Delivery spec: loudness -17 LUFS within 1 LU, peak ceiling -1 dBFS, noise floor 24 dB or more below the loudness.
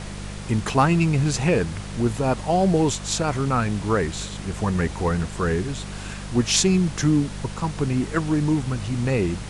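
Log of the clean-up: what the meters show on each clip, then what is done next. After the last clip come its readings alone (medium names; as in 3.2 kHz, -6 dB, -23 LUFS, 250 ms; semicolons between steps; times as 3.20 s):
hum 50 Hz; highest harmonic 200 Hz; hum level -32 dBFS; noise floor -34 dBFS; noise floor target -47 dBFS; loudness -23.0 LUFS; peak level -3.0 dBFS; loudness target -17.0 LUFS
-> de-hum 50 Hz, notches 4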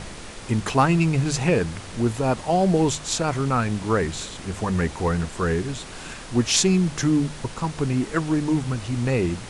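hum not found; noise floor -38 dBFS; noise floor target -47 dBFS
-> noise print and reduce 9 dB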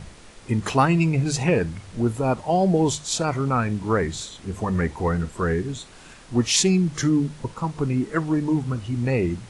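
noise floor -46 dBFS; noise floor target -47 dBFS
-> noise print and reduce 6 dB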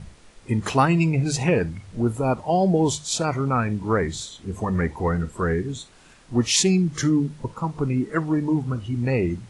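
noise floor -51 dBFS; loudness -23.0 LUFS; peak level -3.5 dBFS; loudness target -17.0 LUFS
-> trim +6 dB; peak limiter -1 dBFS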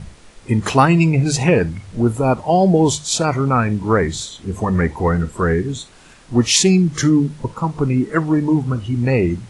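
loudness -17.0 LUFS; peak level -1.0 dBFS; noise floor -45 dBFS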